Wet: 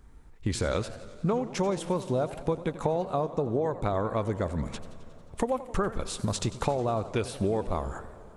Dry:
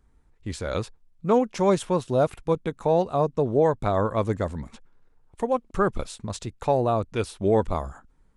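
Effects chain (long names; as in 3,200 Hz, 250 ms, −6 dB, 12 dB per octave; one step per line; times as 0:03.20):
downward compressor 12 to 1, threshold −33 dBFS, peak gain reduction 18 dB
on a send at −18.5 dB: convolution reverb RT60 4.0 s, pre-delay 72 ms
on the sum: feedback echo with a swinging delay time 90 ms, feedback 70%, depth 209 cents, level −16 dB
level +8.5 dB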